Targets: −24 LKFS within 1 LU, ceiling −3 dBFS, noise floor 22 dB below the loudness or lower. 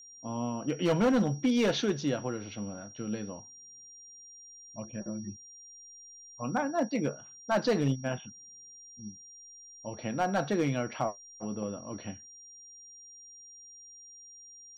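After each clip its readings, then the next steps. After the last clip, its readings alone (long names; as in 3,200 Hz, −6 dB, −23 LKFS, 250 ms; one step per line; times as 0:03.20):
share of clipped samples 0.5%; peaks flattened at −20.5 dBFS; interfering tone 5,700 Hz; level of the tone −49 dBFS; integrated loudness −32.0 LKFS; sample peak −20.5 dBFS; target loudness −24.0 LKFS
→ clipped peaks rebuilt −20.5 dBFS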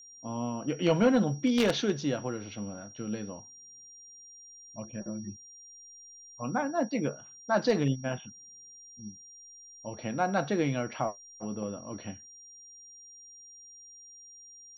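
share of clipped samples 0.0%; interfering tone 5,700 Hz; level of the tone −49 dBFS
→ notch filter 5,700 Hz, Q 30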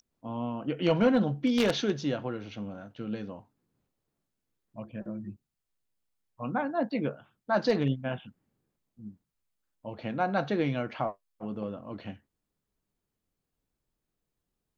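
interfering tone none found; integrated loudness −31.0 LKFS; sample peak −11.5 dBFS; target loudness −24.0 LKFS
→ level +7 dB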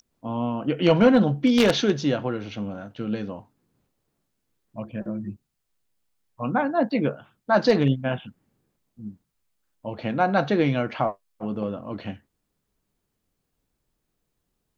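integrated loudness −24.0 LKFS; sample peak −4.5 dBFS; background noise floor −78 dBFS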